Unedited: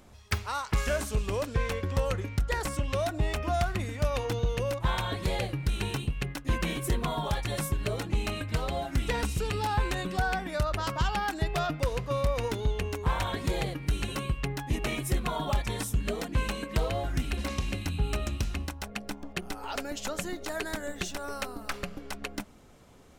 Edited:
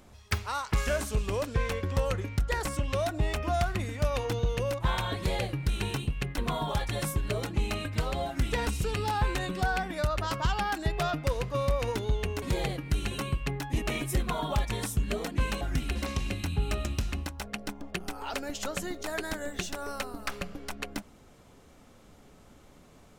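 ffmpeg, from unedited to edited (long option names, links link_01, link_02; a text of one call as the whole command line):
ffmpeg -i in.wav -filter_complex "[0:a]asplit=4[link_01][link_02][link_03][link_04];[link_01]atrim=end=6.382[link_05];[link_02]atrim=start=6.938:end=12.982[link_06];[link_03]atrim=start=13.388:end=16.582[link_07];[link_04]atrim=start=17.028[link_08];[link_05][link_06]acrossfade=duration=0.004:curve1=hsin:curve2=hsin[link_09];[link_09][link_07]acrossfade=duration=0.004:curve1=hsin:curve2=hsin[link_10];[link_10][link_08]acrossfade=duration=0.004:curve1=hsin:curve2=hsin" out.wav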